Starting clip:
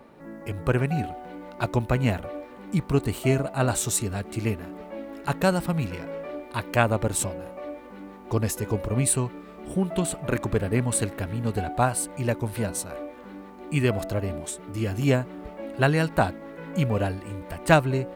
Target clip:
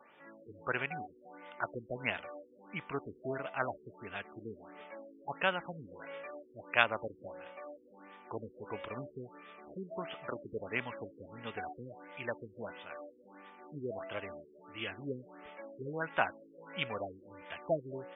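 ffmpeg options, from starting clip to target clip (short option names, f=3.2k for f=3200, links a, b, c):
-af "aderivative,afftfilt=real='re*lt(b*sr/1024,490*pow(3700/490,0.5+0.5*sin(2*PI*1.5*pts/sr)))':imag='im*lt(b*sr/1024,490*pow(3700/490,0.5+0.5*sin(2*PI*1.5*pts/sr)))':win_size=1024:overlap=0.75,volume=10.5dB"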